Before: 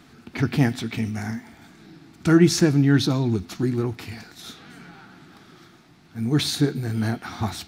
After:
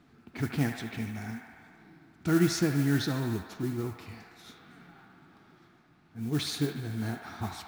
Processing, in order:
delay with a band-pass on its return 74 ms, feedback 80%, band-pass 1,400 Hz, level −5.5 dB
noise that follows the level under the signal 20 dB
one half of a high-frequency compander decoder only
level −9 dB

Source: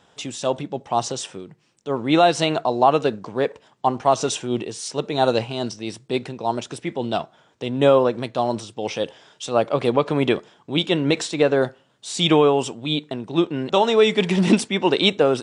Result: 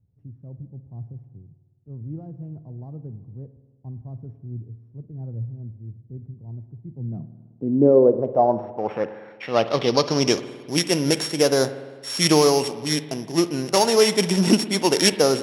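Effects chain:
samples sorted by size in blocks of 8 samples
low-pass filter sweep 100 Hz → 8,800 Hz, 0:06.79–0:10.57
spring reverb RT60 1.5 s, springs 52 ms, chirp 40 ms, DRR 12.5 dB
level −1 dB

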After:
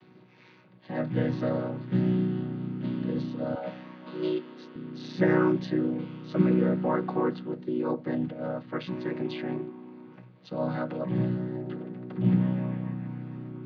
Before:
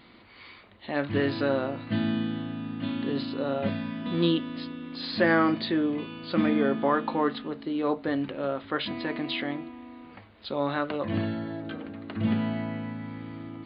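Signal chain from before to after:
channel vocoder with a chord as carrier major triad, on B2
0:03.55–0:04.76: high-pass filter 460 Hz 12 dB per octave
level +1 dB

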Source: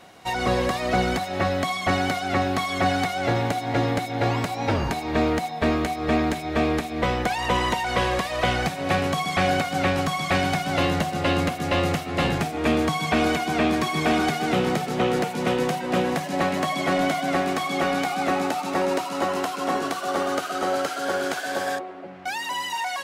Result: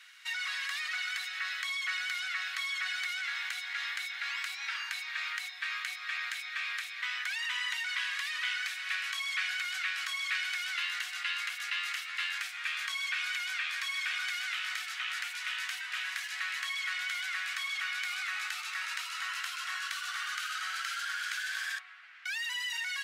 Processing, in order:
Butterworth high-pass 1,500 Hz 36 dB per octave
high-shelf EQ 5,400 Hz −8.5 dB
in parallel at −3 dB: compressor whose output falls as the input rises −38 dBFS, ratio −1
on the sum: level −4.5 dB

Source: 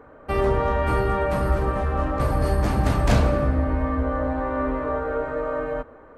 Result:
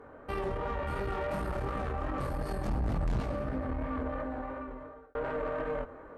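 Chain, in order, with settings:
speech leveller within 4 dB 0.5 s
0:00.95–0:01.89: hard clipping −18 dBFS, distortion −22 dB
chorus effect 2.8 Hz, delay 19.5 ms, depth 4.7 ms
brickwall limiter −23 dBFS, peak gain reduction 10.5 dB
0:02.68–0:03.20: spectral tilt −2 dB per octave
0:03.94–0:05.15: fade out
tube saturation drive 26 dB, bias 0.55

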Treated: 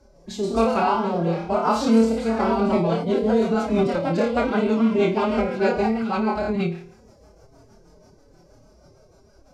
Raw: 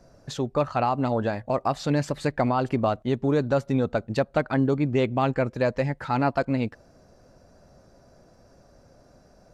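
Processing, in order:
delay with pitch and tempo change per echo 160 ms, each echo +2 semitones, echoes 3, each echo −6 dB
flutter between parallel walls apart 4.7 metres, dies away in 0.54 s
rotating-speaker cabinet horn 1 Hz, later 6.3 Hz, at 0:02.15
phase-vocoder pitch shift with formants kept +7.5 semitones
notch filter 1,800 Hz, Q 6.7
level +2 dB

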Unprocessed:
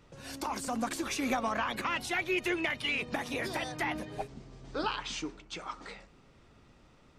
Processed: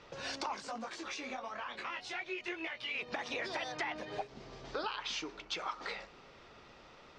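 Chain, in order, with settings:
parametric band 280 Hz −4.5 dB 0.49 octaves
downward compressor 6 to 1, threshold −43 dBFS, peak gain reduction 15 dB
low-pass filter 5,700 Hz 24 dB per octave
bass and treble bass −13 dB, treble +1 dB
0:00.56–0:02.95: micro pitch shift up and down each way 18 cents
level +8 dB

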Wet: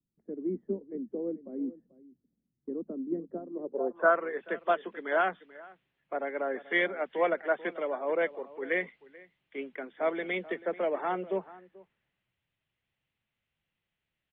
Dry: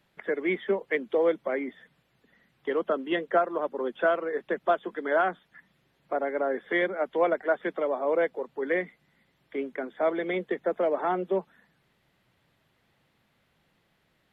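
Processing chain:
slap from a distant wall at 75 metres, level −16 dB
low-pass filter sweep 270 Hz → 2,800 Hz, 0:03.54–0:04.33
multiband upward and downward expander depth 40%
level −5 dB

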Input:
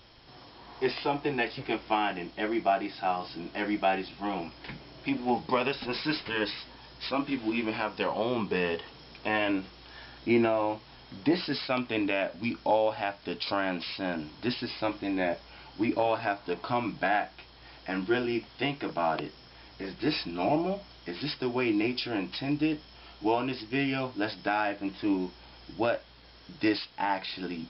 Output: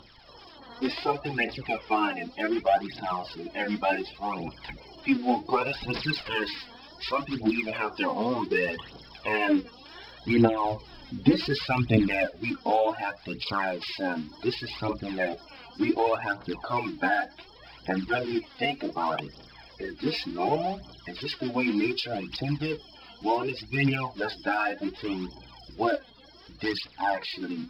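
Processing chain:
spectral magnitudes quantised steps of 30 dB
0:23.10–0:23.75: parametric band 1,200 Hz −9.5 dB 0.22 octaves
phase shifter 0.67 Hz, delay 4.4 ms, feedback 64%
0:10.65–0:12.27: bass and treble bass +11 dB, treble +2 dB

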